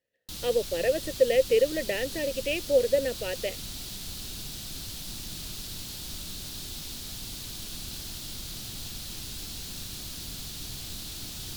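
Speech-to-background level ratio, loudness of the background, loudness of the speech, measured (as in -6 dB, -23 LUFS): 9.5 dB, -36.5 LUFS, -27.0 LUFS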